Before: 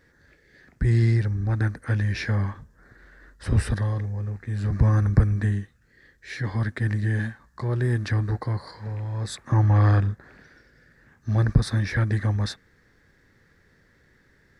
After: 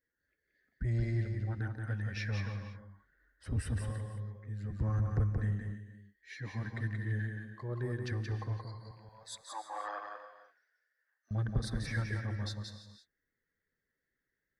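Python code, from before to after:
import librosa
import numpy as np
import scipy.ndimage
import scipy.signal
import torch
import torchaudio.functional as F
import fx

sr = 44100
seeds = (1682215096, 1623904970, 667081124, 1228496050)

y = fx.bin_expand(x, sr, power=1.5)
y = fx.highpass(y, sr, hz=610.0, slope=24, at=(8.91, 11.31))
y = 10.0 ** (-17.5 / 20.0) * np.tanh(y / 10.0 ** (-17.5 / 20.0))
y = y + 10.0 ** (-4.5 / 20.0) * np.pad(y, (int(177 * sr / 1000.0), 0))[:len(y)]
y = fx.rev_gated(y, sr, seeds[0], gate_ms=360, shape='rising', drr_db=10.5)
y = y * 10.0 ** (-7.5 / 20.0)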